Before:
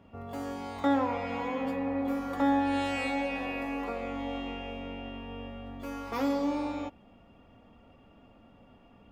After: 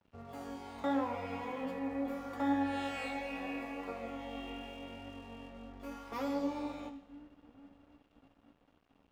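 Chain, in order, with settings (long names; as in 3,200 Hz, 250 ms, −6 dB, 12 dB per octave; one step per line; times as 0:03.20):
echo with a time of its own for lows and highs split 410 Hz, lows 675 ms, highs 82 ms, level −14 dB
flanger 0.78 Hz, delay 10 ms, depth 9.5 ms, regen +43%
dead-zone distortion −58.5 dBFS
level −2.5 dB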